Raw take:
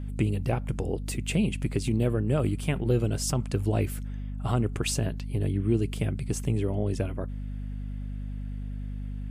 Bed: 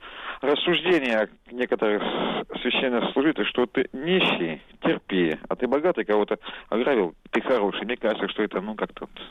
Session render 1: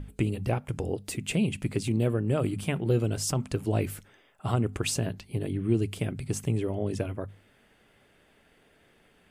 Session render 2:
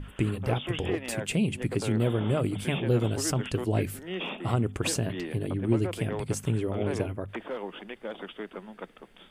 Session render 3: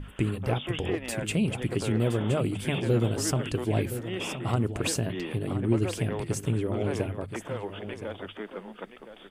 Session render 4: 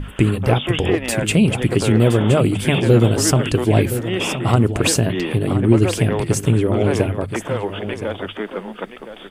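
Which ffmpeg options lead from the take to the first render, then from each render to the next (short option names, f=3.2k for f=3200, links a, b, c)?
-af "bandreject=f=50:t=h:w=6,bandreject=f=100:t=h:w=6,bandreject=f=150:t=h:w=6,bandreject=f=200:t=h:w=6,bandreject=f=250:t=h:w=6"
-filter_complex "[1:a]volume=-13.5dB[a];[0:a][a]amix=inputs=2:normalize=0"
-af "aecho=1:1:1020:0.282"
-af "volume=11.5dB,alimiter=limit=-2dB:level=0:latency=1"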